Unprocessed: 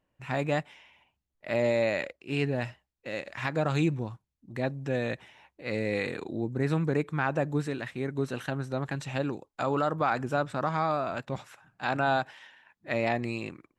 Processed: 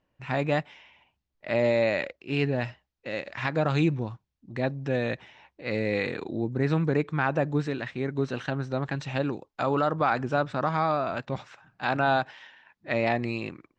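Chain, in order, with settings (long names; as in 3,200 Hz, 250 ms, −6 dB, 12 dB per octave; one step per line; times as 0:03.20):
low-pass filter 6,000 Hz 24 dB per octave
level +2.5 dB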